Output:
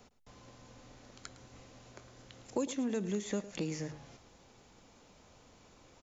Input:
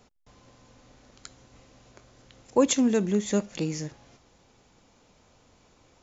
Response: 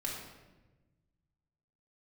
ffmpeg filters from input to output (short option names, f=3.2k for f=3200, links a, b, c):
-filter_complex "[0:a]bandreject=f=50:t=h:w=6,bandreject=f=100:t=h:w=6,bandreject=f=150:t=h:w=6,acrossover=split=440|3000[a][b][c];[a]acompressor=threshold=-36dB:ratio=4[d];[b]acompressor=threshold=-42dB:ratio=4[e];[c]acompressor=threshold=-48dB:ratio=4[f];[d][e][f]amix=inputs=3:normalize=0,aecho=1:1:108:0.168"